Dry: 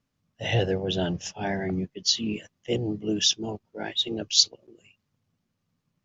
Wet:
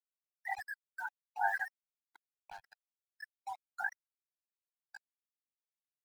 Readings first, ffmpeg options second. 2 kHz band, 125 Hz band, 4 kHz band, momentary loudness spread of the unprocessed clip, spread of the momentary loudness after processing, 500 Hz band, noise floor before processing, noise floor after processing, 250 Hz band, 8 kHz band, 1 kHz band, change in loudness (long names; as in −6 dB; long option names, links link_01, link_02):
−1.5 dB, below −40 dB, below −40 dB, 11 LU, 22 LU, −25.0 dB, −79 dBFS, below −85 dBFS, below −40 dB, can't be measured, −0.5 dB, −13.5 dB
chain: -filter_complex "[0:a]aphaser=in_gain=1:out_gain=1:delay=2.1:decay=0.42:speed=1.4:type=sinusoidal,acompressor=threshold=-24dB:ratio=3,asuperpass=centerf=1200:order=12:qfactor=1.1,afftfilt=real='re*gte(hypot(re,im),0.0398)':imag='im*gte(hypot(re,im),0.0398)':win_size=1024:overlap=0.75,equalizer=frequency=1100:width_type=o:width=0.22:gain=-13.5,asplit=2[link_01][link_02];[link_02]aecho=0:1:1101:0.1[link_03];[link_01][link_03]amix=inputs=2:normalize=0,acrusher=bits=8:mix=0:aa=0.000001,tremolo=f=3.2:d=0.36,afftdn=noise_reduction=15:noise_floor=-62,volume=7.5dB"